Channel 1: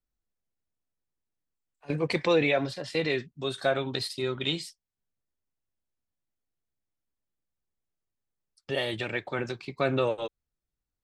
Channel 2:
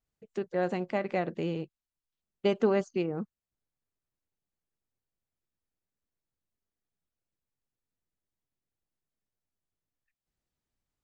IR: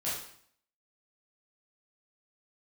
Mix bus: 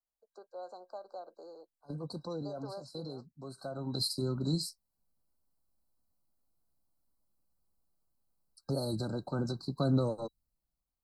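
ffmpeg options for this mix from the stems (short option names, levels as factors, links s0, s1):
-filter_complex "[0:a]dynaudnorm=f=140:g=11:m=4.47,volume=0.631,afade=t=in:st=3.7:d=0.43:silence=0.237137[s0];[1:a]highpass=f=500:w=0.5412,highpass=f=500:w=1.3066,volume=0.668[s1];[s0][s1]amix=inputs=2:normalize=0,acrossover=split=300|3000[s2][s3][s4];[s3]acompressor=threshold=0.00631:ratio=2[s5];[s2][s5][s4]amix=inputs=3:normalize=0,afftfilt=real='re*(1-between(b*sr/4096,1600,3900))':imag='im*(1-between(b*sr/4096,1600,3900))':win_size=4096:overlap=0.75,equalizer=f=100:t=o:w=0.67:g=-7,equalizer=f=400:t=o:w=0.67:g=-7,equalizer=f=1600:t=o:w=0.67:g=-10,equalizer=f=6300:t=o:w=0.67:g=-10"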